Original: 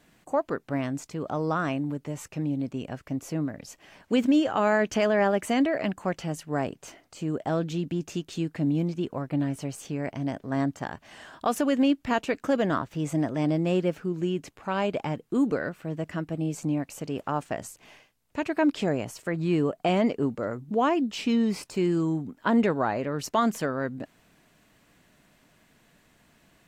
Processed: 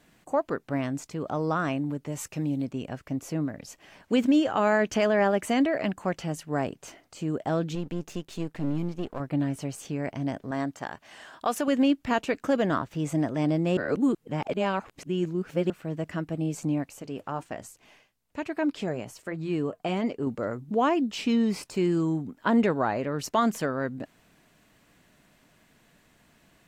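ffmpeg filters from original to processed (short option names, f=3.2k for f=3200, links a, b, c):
-filter_complex "[0:a]asettb=1/sr,asplit=3[a][b][c];[a]atrim=end=2.124[d];[b]atrim=start=2.12:end=2.65,asetpts=PTS-STARTPTS,afade=t=in:d=0.004:c=qsin,afade=t=out:st=0.526:d=0.004:c=qsin,highshelf=f=4.1k:g=7[e];[c]atrim=start=2.646[f];[d][e]acrossfade=d=0.004:c1=hsin:c2=qsin[g];[g][f]acrossfade=d=0.004:c1=qsin:c2=hsin,asettb=1/sr,asplit=3[h][i][j];[h]atrim=end=7.754[k];[i]atrim=start=7.75:end=9.2,asetpts=PTS-STARTPTS,afade=t=in:d=0.004:c=qsin,afade=t=out:st=1.446:d=0.004:c=qsin,aeval=exprs='if(lt(val(0),0),0.251*val(0),val(0))':c=same[l];[j]atrim=start=9.196[m];[k][l]acrossfade=d=0.004:c1=hsin:c2=qsin[n];[n][m]acrossfade=d=0.004:c1=qsin:c2=hsin,asettb=1/sr,asplit=3[o][p][q];[o]atrim=end=10.514[r];[p]atrim=start=10.51:end=11.68,asetpts=PTS-STARTPTS,afade=t=in:d=0.004:c=qsin,afade=t=out:st=1.166:d=0.004:c=qsin,lowshelf=f=260:g=-9[s];[q]atrim=start=11.676[t];[r][s]acrossfade=d=0.004:c1=hsin:c2=qsin[u];[u][t]acrossfade=d=0.004:c1=qsin:c2=hsin,asettb=1/sr,asplit=3[v][w][x];[v]atrim=end=16.894[y];[w]atrim=start=16.89:end=20.27,asetpts=PTS-STARTPTS,afade=t=in:d=0.004:c=qsin,afade=t=out:st=3.376:d=0.004:c=qsin,flanger=delay=2.2:depth=3.4:regen=-74:speed=1.2:shape=triangular[z];[x]atrim=start=20.266[aa];[y][z]acrossfade=d=0.004:c1=hsin:c2=qsin[ab];[ab][aa]acrossfade=d=0.004:c1=qsin:c2=hsin,asplit=3[ac][ad][ae];[ac]atrim=end=13.772[af];[ad]atrim=start=13.768:end=15.702,asetpts=PTS-STARTPTS,areverse[ag];[ae]atrim=start=15.698[ah];[af][ag]acrossfade=d=0.004:c1=hsin:c2=hsin[ai];[ai][ah]acrossfade=d=0.004:c1=hsin:c2=hsin"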